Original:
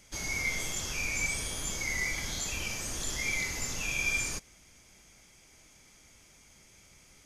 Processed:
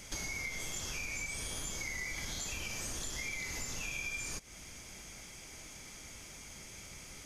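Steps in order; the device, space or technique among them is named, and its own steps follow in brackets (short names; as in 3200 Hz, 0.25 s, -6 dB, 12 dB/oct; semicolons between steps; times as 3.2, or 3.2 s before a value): serial compression, leveller first (compressor 2.5:1, threshold -37 dBFS, peak gain reduction 8 dB; compressor 4:1, threshold -47 dBFS, peak gain reduction 12 dB); gain +8.5 dB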